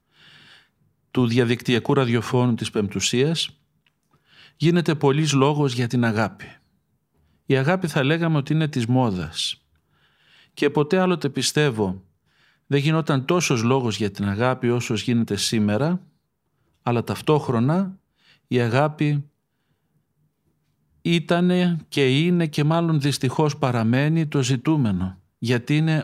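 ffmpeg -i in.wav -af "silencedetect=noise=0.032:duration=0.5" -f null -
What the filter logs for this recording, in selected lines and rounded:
silence_start: 0.00
silence_end: 1.15 | silence_duration: 1.15
silence_start: 3.46
silence_end: 4.61 | silence_duration: 1.15
silence_start: 6.44
silence_end: 7.50 | silence_duration: 1.05
silence_start: 9.52
silence_end: 10.57 | silence_duration: 1.05
silence_start: 11.97
silence_end: 12.71 | silence_duration: 0.74
silence_start: 15.97
silence_end: 16.86 | silence_duration: 0.90
silence_start: 17.90
silence_end: 18.51 | silence_duration: 0.61
silence_start: 19.21
silence_end: 21.06 | silence_duration: 1.84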